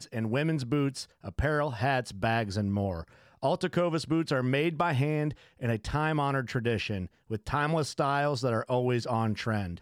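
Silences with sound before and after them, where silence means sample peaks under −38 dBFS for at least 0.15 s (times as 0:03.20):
0:01.03–0:01.25
0:03.03–0:03.43
0:05.33–0:05.61
0:07.06–0:07.30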